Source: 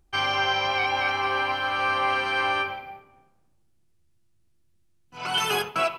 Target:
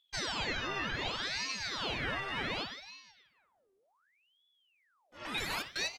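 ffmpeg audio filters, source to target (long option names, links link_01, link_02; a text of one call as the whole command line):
ffmpeg -i in.wav -filter_complex "[0:a]asplit=2[link_01][link_02];[link_02]adelay=478.1,volume=-21dB,highshelf=frequency=4000:gain=-10.8[link_03];[link_01][link_03]amix=inputs=2:normalize=0,aeval=exprs='val(0)*sin(2*PI*1900*n/s+1900*0.8/0.67*sin(2*PI*0.67*n/s))':channel_layout=same,volume=-8.5dB" out.wav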